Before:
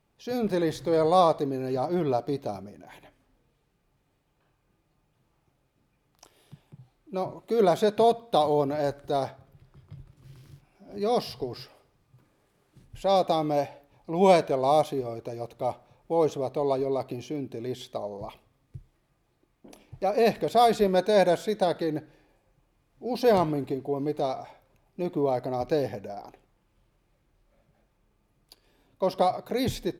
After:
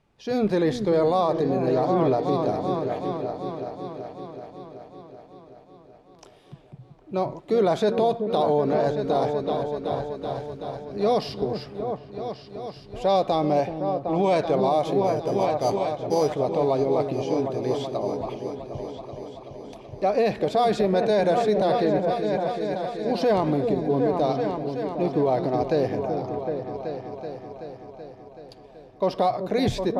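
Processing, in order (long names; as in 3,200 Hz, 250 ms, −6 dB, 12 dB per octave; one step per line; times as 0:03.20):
0:15.04–0:16.35: sample-rate reduction 5,400 Hz, jitter 0%
high-frequency loss of the air 67 metres
echo whose low-pass opens from repeat to repeat 379 ms, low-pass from 400 Hz, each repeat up 2 octaves, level −6 dB
brickwall limiter −18 dBFS, peak gain reduction 10.5 dB
level +5 dB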